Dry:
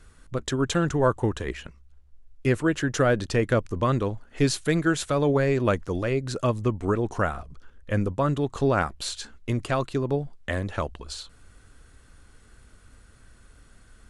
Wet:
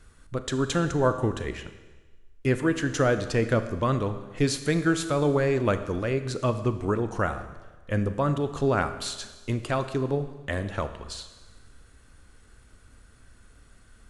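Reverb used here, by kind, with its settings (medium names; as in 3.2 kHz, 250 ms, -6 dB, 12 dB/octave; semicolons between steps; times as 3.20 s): Schroeder reverb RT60 1.3 s, combs from 27 ms, DRR 10 dB; trim -1.5 dB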